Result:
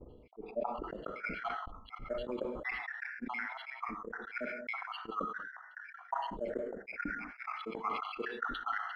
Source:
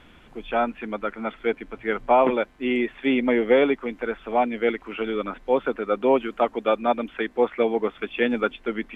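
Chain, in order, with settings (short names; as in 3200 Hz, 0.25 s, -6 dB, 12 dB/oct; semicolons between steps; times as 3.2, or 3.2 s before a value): random spectral dropouts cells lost 82%; auto swell 0.304 s; compressor 6:1, threshold -47 dBFS, peak gain reduction 15.5 dB; careless resampling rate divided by 6×, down filtered, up hold; non-linear reverb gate 0.24 s flat, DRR 10.5 dB; expander -48 dBFS; low-pass sweep 440 Hz -> 1600 Hz, 0.4–0.93; sustainer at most 44 dB/s; gain +10.5 dB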